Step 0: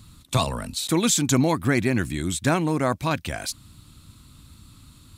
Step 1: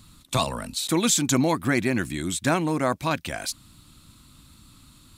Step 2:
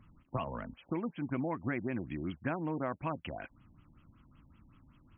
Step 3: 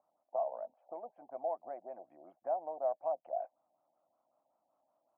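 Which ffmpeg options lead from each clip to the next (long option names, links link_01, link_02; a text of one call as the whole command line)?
ffmpeg -i in.wav -af "equalizer=frequency=84:width=0.85:gain=-7,bandreject=frequency=430:width=12" out.wav
ffmpeg -i in.wav -af "acompressor=threshold=-23dB:ratio=6,afftfilt=real='re*lt(b*sr/1024,920*pow(3400/920,0.5+0.5*sin(2*PI*5.3*pts/sr)))':imag='im*lt(b*sr/1024,920*pow(3400/920,0.5+0.5*sin(2*PI*5.3*pts/sr)))':win_size=1024:overlap=0.75,volume=-7.5dB" out.wav
ffmpeg -i in.wav -af "asuperpass=centerf=680:order=4:qfactor=3.6,volume=8.5dB" out.wav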